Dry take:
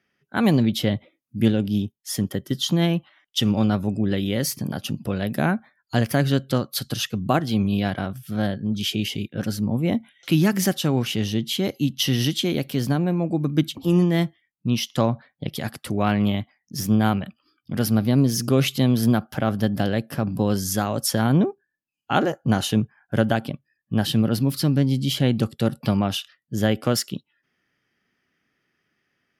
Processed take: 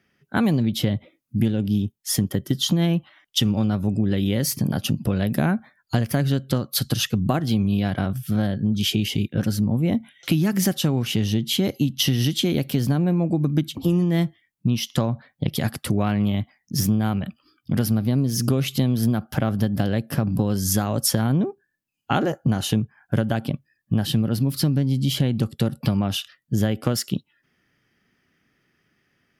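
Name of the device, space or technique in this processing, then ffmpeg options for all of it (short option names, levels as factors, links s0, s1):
ASMR close-microphone chain: -af "lowshelf=f=220:g=7.5,acompressor=threshold=0.0891:ratio=6,highshelf=f=7900:g=3.5,volume=1.5"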